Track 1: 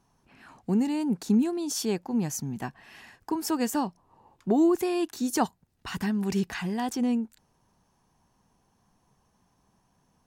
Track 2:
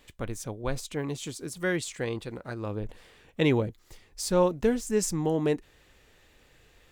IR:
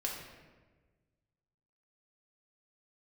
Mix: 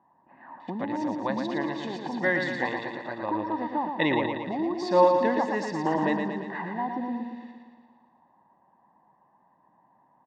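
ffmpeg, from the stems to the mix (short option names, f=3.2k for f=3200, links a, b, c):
-filter_complex "[0:a]lowpass=1.2k,acompressor=threshold=-33dB:ratio=3,volume=1dB,asplit=2[a][b];[b]volume=-5.5dB[c];[1:a]adelay=600,volume=-1.5dB,asplit=2[d][e];[e]volume=-5.5dB[f];[c][f]amix=inputs=2:normalize=0,aecho=0:1:115|230|345|460|575|690|805|920|1035|1150:1|0.6|0.36|0.216|0.13|0.0778|0.0467|0.028|0.0168|0.0101[g];[a][d][g]amix=inputs=3:normalize=0,highpass=270,equalizer=f=330:t=q:w=4:g=5,equalizer=f=550:t=q:w=4:g=10,equalizer=f=930:t=q:w=4:g=7,equalizer=f=1.9k:t=q:w=4:g=8,equalizer=f=2.8k:t=q:w=4:g=-5,equalizer=f=4.1k:t=q:w=4:g=3,lowpass=f=4.3k:w=0.5412,lowpass=f=4.3k:w=1.3066,aecho=1:1:1.1:0.64"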